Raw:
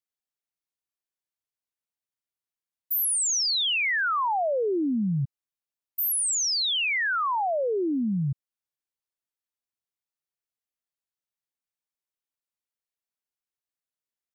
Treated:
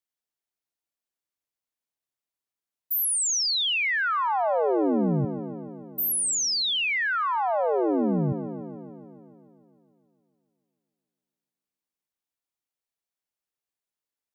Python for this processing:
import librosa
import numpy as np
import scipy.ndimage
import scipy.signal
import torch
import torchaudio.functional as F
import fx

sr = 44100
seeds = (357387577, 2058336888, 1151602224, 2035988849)

y = fx.echo_wet_bandpass(x, sr, ms=145, feedback_pct=70, hz=470.0, wet_db=-3.5)